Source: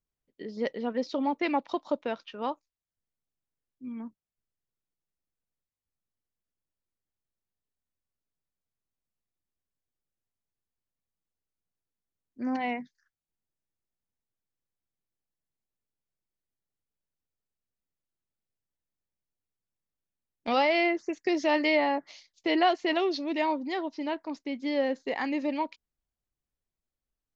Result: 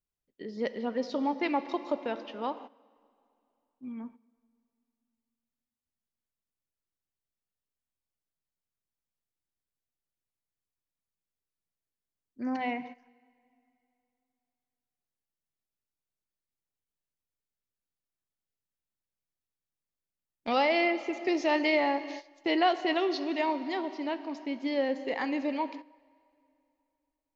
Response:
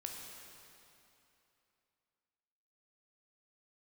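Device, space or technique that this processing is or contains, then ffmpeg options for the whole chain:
keyed gated reverb: -filter_complex "[0:a]asplit=3[a][b][c];[1:a]atrim=start_sample=2205[d];[b][d]afir=irnorm=-1:irlink=0[e];[c]apad=whole_len=1206167[f];[e][f]sidechaingate=range=-14dB:threshold=-49dB:ratio=16:detection=peak,volume=-3dB[g];[a][g]amix=inputs=2:normalize=0,volume=-4.5dB"

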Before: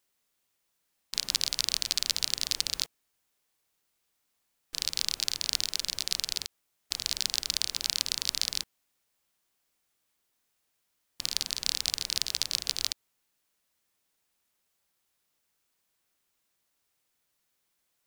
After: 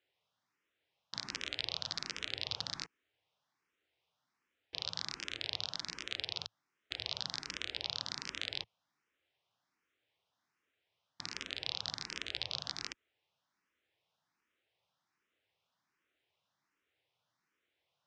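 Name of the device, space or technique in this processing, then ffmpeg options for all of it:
barber-pole phaser into a guitar amplifier: -filter_complex "[0:a]asplit=2[a][b];[b]afreqshift=1.3[c];[a][c]amix=inputs=2:normalize=1,asoftclip=type=tanh:threshold=-16dB,highpass=95,equalizer=f=110:t=q:w=4:g=4,equalizer=f=220:t=q:w=4:g=-5,equalizer=f=4.4k:t=q:w=4:g=-7,lowpass=f=4.6k:w=0.5412,lowpass=f=4.6k:w=1.3066,volume=3dB"

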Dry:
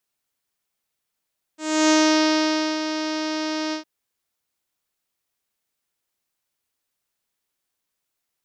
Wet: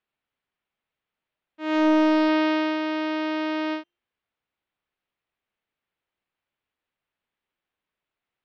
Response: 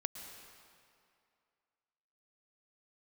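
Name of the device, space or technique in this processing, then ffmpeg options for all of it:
synthesiser wavefolder: -filter_complex "[0:a]bandreject=f=347.3:t=h:w=4,bandreject=f=694.6:t=h:w=4,bandreject=f=1.0419k:t=h:w=4,bandreject=f=1.3892k:t=h:w=4,bandreject=f=1.7365k:t=h:w=4,bandreject=f=2.0838k:t=h:w=4,bandreject=f=2.4311k:t=h:w=4,bandreject=f=2.7784k:t=h:w=4,bandreject=f=3.1257k:t=h:w=4,bandreject=f=3.473k:t=h:w=4,bandreject=f=3.8203k:t=h:w=4,bandreject=f=4.1676k:t=h:w=4,bandreject=f=4.5149k:t=h:w=4,bandreject=f=4.8622k:t=h:w=4,bandreject=f=5.2095k:t=h:w=4,bandreject=f=5.5568k:t=h:w=4,bandreject=f=5.9041k:t=h:w=4,bandreject=f=6.2514k:t=h:w=4,bandreject=f=6.5987k:t=h:w=4,bandreject=f=6.946k:t=h:w=4,bandreject=f=7.2933k:t=h:w=4,bandreject=f=7.6406k:t=h:w=4,bandreject=f=7.9879k:t=h:w=4,bandreject=f=8.3352k:t=h:w=4,bandreject=f=8.6825k:t=h:w=4,bandreject=f=9.0298k:t=h:w=4,bandreject=f=9.3771k:t=h:w=4,bandreject=f=9.7244k:t=h:w=4,bandreject=f=10.0717k:t=h:w=4,bandreject=f=10.419k:t=h:w=4,bandreject=f=10.7663k:t=h:w=4,asettb=1/sr,asplit=3[a][b][c];[a]atrim=end=1.744[d];[b]atrim=start=1.74:end=2.29,asetpts=PTS-STARTPTS,afade=t=in:d=0.004:c=qsin,afade=t=out:st=0.546:d=0.004:c=qsin,equalizer=f=5.3k:w=0.8:g=3.5[e];[c]atrim=start=2.286[f];[d][e]acrossfade=d=0.004:c1=hsin:c2=qsin[g];[g][f]acrossfade=d=0.004:c1=qsin:c2=hsin,aeval=exprs='0.251*(abs(mod(val(0)/0.251+3,4)-2)-1)':c=same,lowpass=f=3.2k:w=0.5412,lowpass=f=3.2k:w=1.3066"

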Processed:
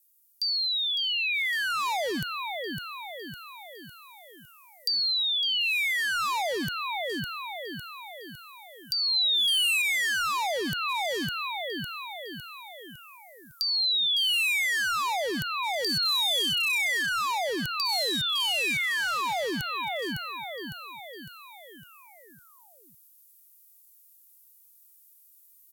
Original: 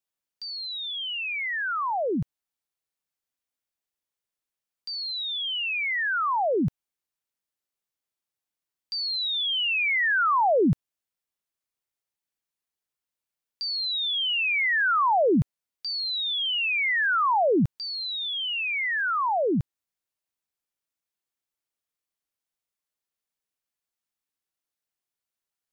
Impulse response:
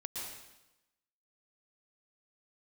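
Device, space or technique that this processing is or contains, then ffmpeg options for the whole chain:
FM broadcast chain: -filter_complex "[0:a]asettb=1/sr,asplit=3[a][b][c];[a]atrim=end=9.164[d];[b]atrim=start=9.16:end=9.82,asetpts=PTS-STARTPTS,afade=t=in:d=0.004:c=qsin,afade=t=out:st=0.656:d=0.004:c=qsin,equalizer=f=2k:w=0.39:g=3[e];[c]atrim=start=9.816[f];[d][e]acrossfade=d=0.004:c1=hsin:c2=qsin[g];[g][f]acrossfade=d=0.004:c1=qsin:c2=hsin,highpass=f=44:p=1,aecho=1:1:556|1112|1668|2224|2780|3336:0.316|0.164|0.0855|0.0445|0.0231|0.012,dynaudnorm=f=390:g=3:m=7dB,acrossover=split=340|940|2100[h][i][j][k];[h]acompressor=threshold=-23dB:ratio=4[l];[i]acompressor=threshold=-23dB:ratio=4[m];[j]acompressor=threshold=-29dB:ratio=4[n];[k]acompressor=threshold=-35dB:ratio=4[o];[l][m][n][o]amix=inputs=4:normalize=0,aemphasis=mode=production:type=75fm,alimiter=limit=-17dB:level=0:latency=1:release=249,asoftclip=type=hard:threshold=-20.5dB,lowpass=f=15k:w=0.5412,lowpass=f=15k:w=1.3066,aemphasis=mode=production:type=75fm,volume=-5.5dB"

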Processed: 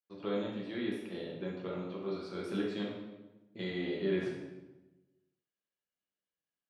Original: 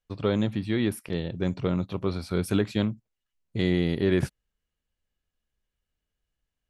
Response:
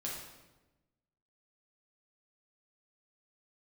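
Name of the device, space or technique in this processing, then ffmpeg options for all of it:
supermarket ceiling speaker: -filter_complex "[0:a]asettb=1/sr,asplit=3[a][b][c];[a]atrim=end=1.344[d];[b]atrim=start=1.34:end=2,asetpts=PTS-STARTPTS,afade=t=in:d=0.004:c=qsin,afade=t=out:st=0.656:d=0.004:c=qsin,acrossover=split=4200[e][f];[f]acompressor=threshold=-58dB:ratio=4:attack=1:release=60[g];[e][g]amix=inputs=2:normalize=0[h];[c]atrim=start=1.996[i];[d][h]acrossfade=d=0.004:c1=hsin:c2=qsin[j];[j][i]acrossfade=d=0.004:c1=qsin:c2=hsin,highpass=260,lowpass=5.6k[k];[1:a]atrim=start_sample=2205[l];[k][l]afir=irnorm=-1:irlink=0,volume=-9dB"

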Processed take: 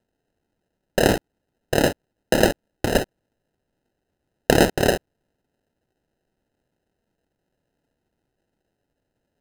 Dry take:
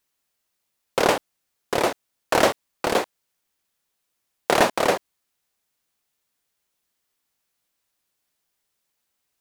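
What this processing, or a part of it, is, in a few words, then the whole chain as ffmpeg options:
crushed at another speed: -af "asetrate=55125,aresample=44100,acrusher=samples=31:mix=1:aa=0.000001,asetrate=35280,aresample=44100,volume=1.5dB"

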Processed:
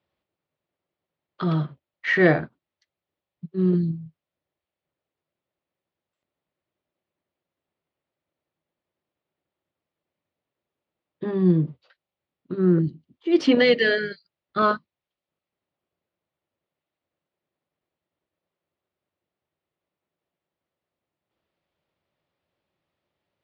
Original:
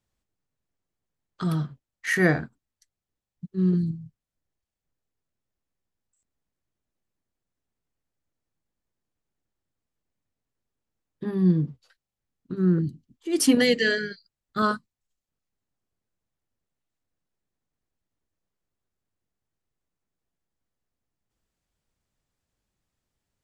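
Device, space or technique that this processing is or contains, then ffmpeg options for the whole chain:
overdrive pedal into a guitar cabinet: -filter_complex "[0:a]asplit=2[a][b];[b]highpass=f=720:p=1,volume=11dB,asoftclip=type=tanh:threshold=-7dB[c];[a][c]amix=inputs=2:normalize=0,lowpass=f=3.6k:p=1,volume=-6dB,highpass=75,equalizer=f=83:t=q:w=4:g=5,equalizer=f=160:t=q:w=4:g=6,equalizer=f=350:t=q:w=4:g=6,equalizer=f=580:t=q:w=4:g=7,equalizer=f=1.6k:t=q:w=4:g=-4,lowpass=f=4.1k:w=0.5412,lowpass=f=4.1k:w=1.3066"

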